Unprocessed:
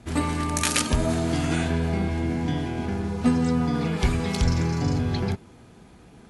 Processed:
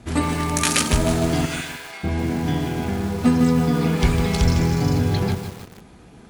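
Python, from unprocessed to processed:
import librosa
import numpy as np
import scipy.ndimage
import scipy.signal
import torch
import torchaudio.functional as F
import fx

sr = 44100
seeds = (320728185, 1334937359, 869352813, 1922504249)

y = fx.highpass(x, sr, hz=1400.0, slope=12, at=(1.45, 2.03), fade=0.02)
y = fx.echo_crushed(y, sr, ms=153, feedback_pct=55, bits=6, wet_db=-8.0)
y = y * 10.0 ** (3.5 / 20.0)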